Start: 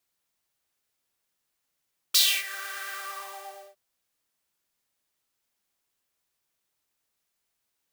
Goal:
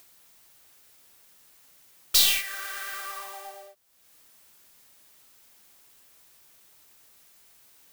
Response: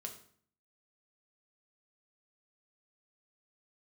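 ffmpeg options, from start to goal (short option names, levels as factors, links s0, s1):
-af "aeval=exprs='0.501*(cos(1*acos(clip(val(0)/0.501,-1,1)))-cos(1*PI/2))+0.0251*(cos(8*acos(clip(val(0)/0.501,-1,1)))-cos(8*PI/2))':c=same,highshelf=f=11000:g=5,acompressor=mode=upward:threshold=0.01:ratio=2.5"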